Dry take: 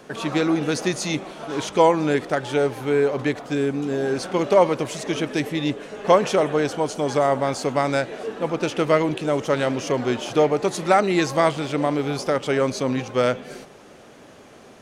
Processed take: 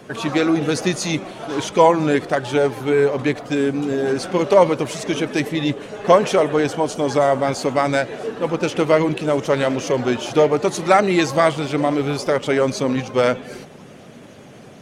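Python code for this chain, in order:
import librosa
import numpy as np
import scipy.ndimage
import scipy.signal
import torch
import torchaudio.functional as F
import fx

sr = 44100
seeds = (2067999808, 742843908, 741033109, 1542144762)

y = fx.spec_quant(x, sr, step_db=15)
y = fx.dmg_noise_band(y, sr, seeds[0], low_hz=100.0, high_hz=260.0, level_db=-50.0)
y = y * 10.0 ** (3.5 / 20.0)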